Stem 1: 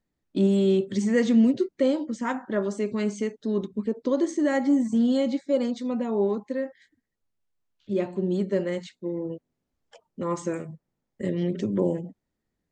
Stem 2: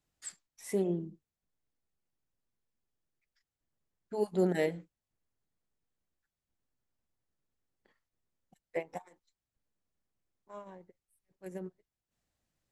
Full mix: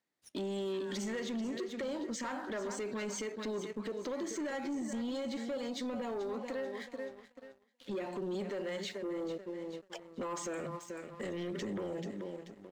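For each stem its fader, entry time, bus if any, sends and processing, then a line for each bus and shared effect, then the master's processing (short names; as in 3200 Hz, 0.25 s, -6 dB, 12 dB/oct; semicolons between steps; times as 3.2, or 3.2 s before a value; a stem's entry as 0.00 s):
+2.5 dB, 0.00 s, no send, echo send -12 dB, weighting filter A; compressor 12:1, threshold -36 dBFS, peak gain reduction 15.5 dB
-11.0 dB, 0.00 s, no send, no echo send, limiter -27 dBFS, peak gain reduction 10 dB; ring modulator with a swept carrier 1600 Hz, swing 30%, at 0.41 Hz; auto duck -10 dB, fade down 0.20 s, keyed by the first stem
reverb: off
echo: feedback echo 0.435 s, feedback 32%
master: sample leveller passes 2; limiter -32.5 dBFS, peak gain reduction 8.5 dB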